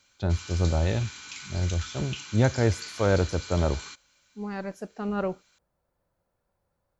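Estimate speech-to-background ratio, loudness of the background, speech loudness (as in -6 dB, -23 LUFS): 11.5 dB, -39.5 LUFS, -28.0 LUFS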